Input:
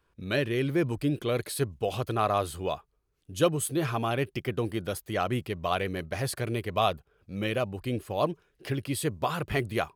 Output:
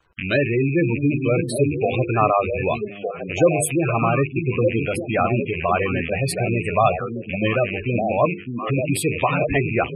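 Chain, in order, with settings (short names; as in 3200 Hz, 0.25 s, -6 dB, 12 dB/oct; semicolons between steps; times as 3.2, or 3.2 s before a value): rattling part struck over -45 dBFS, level -23 dBFS; notches 50/100/150/200/250/300/350/400/450/500 Hz; delay with a stepping band-pass 0.605 s, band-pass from 200 Hz, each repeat 1.4 oct, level -1.5 dB; companded quantiser 6-bit; spectral gate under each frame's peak -15 dB strong; gain +9 dB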